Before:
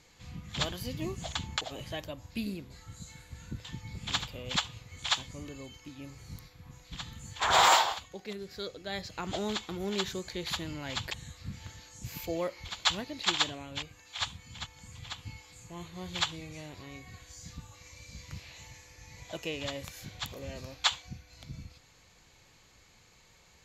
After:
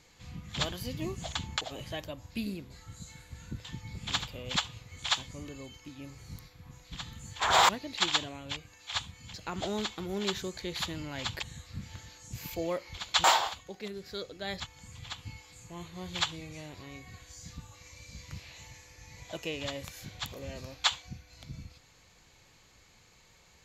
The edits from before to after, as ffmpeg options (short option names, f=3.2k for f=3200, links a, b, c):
-filter_complex "[0:a]asplit=5[a][b][c][d][e];[a]atrim=end=7.692[f];[b]atrim=start=12.948:end=14.602[g];[c]atrim=start=9.048:end=12.952[h];[d]atrim=start=7.688:end=9.052[i];[e]atrim=start=14.598[j];[f][g]acrossfade=d=0.004:c1=hsin:c2=hsin[k];[k][h]acrossfade=d=0.004:c1=hsin:c2=hsin[l];[l][i]acrossfade=d=0.004:c1=hsin:c2=hsin[m];[m][j]acrossfade=d=0.004:c1=hsin:c2=hsin"